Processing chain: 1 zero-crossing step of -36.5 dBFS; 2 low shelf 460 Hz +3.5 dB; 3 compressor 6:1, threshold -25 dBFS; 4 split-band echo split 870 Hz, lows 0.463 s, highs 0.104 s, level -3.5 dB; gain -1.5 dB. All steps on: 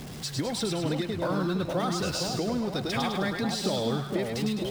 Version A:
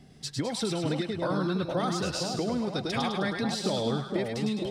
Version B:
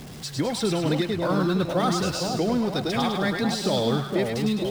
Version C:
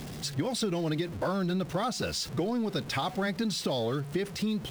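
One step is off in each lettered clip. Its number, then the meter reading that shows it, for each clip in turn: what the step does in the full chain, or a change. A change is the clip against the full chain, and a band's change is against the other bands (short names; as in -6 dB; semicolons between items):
1, distortion -18 dB; 3, mean gain reduction 3.0 dB; 4, echo-to-direct -2.0 dB to none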